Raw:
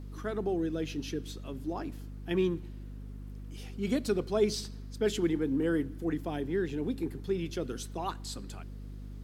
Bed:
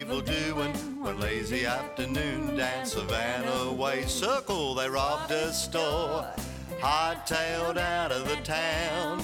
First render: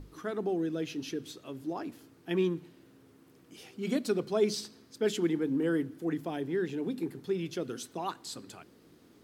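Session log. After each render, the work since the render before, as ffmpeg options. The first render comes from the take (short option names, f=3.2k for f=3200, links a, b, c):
-af "bandreject=f=50:t=h:w=6,bandreject=f=100:t=h:w=6,bandreject=f=150:t=h:w=6,bandreject=f=200:t=h:w=6,bandreject=f=250:t=h:w=6"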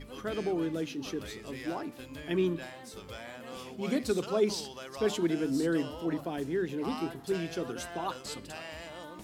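-filter_complex "[1:a]volume=-14.5dB[a];[0:a][a]amix=inputs=2:normalize=0"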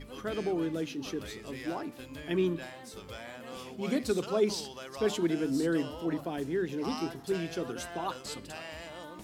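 -filter_complex "[0:a]asettb=1/sr,asplit=3[a][b][c];[a]atrim=end=6.724[d];[b]atrim=start=6.72:end=7.23,asetpts=PTS-STARTPTS,afade=t=in:d=0.004:c=qsin,afade=t=out:st=0.506:d=0.004:c=qsin,equalizer=f=5.6k:w=3.2:g=10[e];[c]atrim=start=7.226[f];[d][e]acrossfade=d=0.004:c1=hsin:c2=qsin[g];[g][f]acrossfade=d=0.004:c1=qsin:c2=hsin"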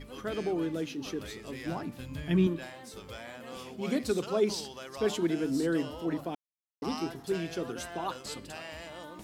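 -filter_complex "[0:a]asettb=1/sr,asplit=3[a][b][c];[a]atrim=end=1.664[d];[b]atrim=start=1.66:end=2.47,asetpts=PTS-STARTPTS,afade=t=in:d=0.004:c=qsin,afade=t=out:st=0.806:d=0.004:c=qsin,lowshelf=f=240:t=q:w=1.5:g=8.5[e];[c]atrim=start=2.466[f];[d][e]acrossfade=d=0.004:c1=hsin:c2=qsin[g];[g][f]acrossfade=d=0.004:c1=qsin:c2=hsin,asplit=3[h][i][j];[h]atrim=end=6.35,asetpts=PTS-STARTPTS,afade=t=out:st=6.346:d=0.004:c=hsin[k];[i]atrim=start=6.35:end=6.82,asetpts=PTS-STARTPTS,volume=0[l];[j]atrim=start=6.82,asetpts=PTS-STARTPTS,afade=t=in:d=0.004:c=hsin[m];[k][l][m]concat=n=3:v=0:a=1"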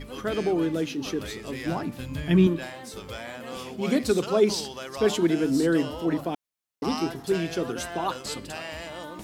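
-af "volume=6.5dB"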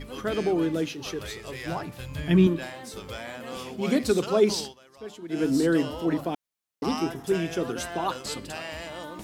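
-filter_complex "[0:a]asettb=1/sr,asplit=3[a][b][c];[a]atrim=end=0.884[d];[b]atrim=start=0.88:end=2.19,asetpts=PTS-STARTPTS,afade=t=in:d=0.004:c=qsin,afade=t=out:st=1.306:d=0.004:c=qsin,equalizer=f=250:t=o:w=0.6:g=-14[e];[c]atrim=start=2.186[f];[d][e]acrossfade=d=0.004:c1=hsin:c2=qsin[g];[g][f]acrossfade=d=0.004:c1=qsin:c2=hsin,asettb=1/sr,asplit=3[h][i][j];[h]atrim=end=6.914[k];[i]atrim=start=6.91:end=7.61,asetpts=PTS-STARTPTS,afade=t=in:d=0.004:c=qsin,afade=t=out:st=0.696:d=0.004:c=qsin,equalizer=f=4.3k:t=o:w=0.21:g=-12.5[l];[j]atrim=start=7.606[m];[k][l]acrossfade=d=0.004:c1=hsin:c2=qsin[n];[n][m]acrossfade=d=0.004:c1=qsin:c2=hsin,asplit=3[o][p][q];[o]atrim=end=4.75,asetpts=PTS-STARTPTS,afade=t=out:st=4.59:d=0.16:c=qsin:silence=0.133352[r];[p]atrim=start=4.75:end=5.29,asetpts=PTS-STARTPTS,volume=-17.5dB[s];[q]atrim=start=5.29,asetpts=PTS-STARTPTS,afade=t=in:d=0.16:c=qsin:silence=0.133352[t];[r][s][t]concat=n=3:v=0:a=1"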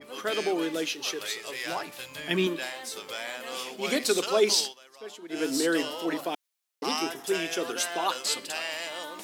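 -af "highpass=390,adynamicequalizer=threshold=0.00562:dfrequency=1800:dqfactor=0.7:tfrequency=1800:tqfactor=0.7:attack=5:release=100:ratio=0.375:range=3.5:mode=boostabove:tftype=highshelf"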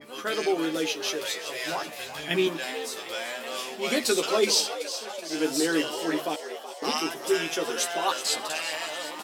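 -filter_complex "[0:a]asplit=2[a][b];[b]adelay=13,volume=-4dB[c];[a][c]amix=inputs=2:normalize=0,asplit=2[d][e];[e]asplit=7[f][g][h][i][j][k][l];[f]adelay=376,afreqshift=82,volume=-11.5dB[m];[g]adelay=752,afreqshift=164,volume=-15.7dB[n];[h]adelay=1128,afreqshift=246,volume=-19.8dB[o];[i]adelay=1504,afreqshift=328,volume=-24dB[p];[j]adelay=1880,afreqshift=410,volume=-28.1dB[q];[k]adelay=2256,afreqshift=492,volume=-32.3dB[r];[l]adelay=2632,afreqshift=574,volume=-36.4dB[s];[m][n][o][p][q][r][s]amix=inputs=7:normalize=0[t];[d][t]amix=inputs=2:normalize=0"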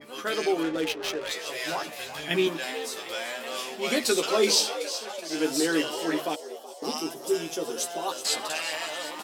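-filter_complex "[0:a]asettb=1/sr,asplit=3[a][b][c];[a]atrim=end=0.634[d];[b]atrim=start=0.63:end=1.32,asetpts=PTS-STARTPTS,afade=t=in:d=0.004:c=qsin,afade=t=out:st=0.686:d=0.004:c=qsin,adynamicsmooth=sensitivity=6:basefreq=550[e];[c]atrim=start=1.316[f];[d][e]acrossfade=d=0.004:c1=hsin:c2=qsin[g];[g][f]acrossfade=d=0.004:c1=qsin:c2=hsin,asettb=1/sr,asplit=3[h][i][j];[h]atrim=end=4.374[k];[i]atrim=start=4.37:end=4.98,asetpts=PTS-STARTPTS,afade=t=in:d=0.004:c=qsin,afade=t=out:st=0.606:d=0.004:c=qsin,asplit=2[l][m];[m]adelay=23,volume=-6dB[n];[l][n]amix=inputs=2:normalize=0,atrim=end_sample=26901[o];[j]atrim=start=4.976[p];[k][o]acrossfade=d=0.004:c1=hsin:c2=qsin[q];[q][p]acrossfade=d=0.004:c1=qsin:c2=hsin,asettb=1/sr,asplit=3[r][s][t];[r]atrim=end=6.354[u];[s]atrim=start=6.35:end=8.25,asetpts=PTS-STARTPTS,afade=t=in:d=0.004:c=qsin,afade=t=out:st=1.896:d=0.004:c=qsin,equalizer=f=1.9k:w=0.75:g=-12.5[v];[t]atrim=start=8.246[w];[u][v]acrossfade=d=0.004:c1=hsin:c2=qsin[x];[x][w]acrossfade=d=0.004:c1=qsin:c2=hsin"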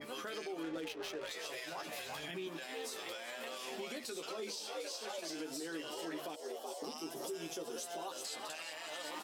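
-af "acompressor=threshold=-33dB:ratio=4,alimiter=level_in=9.5dB:limit=-24dB:level=0:latency=1:release=172,volume=-9.5dB"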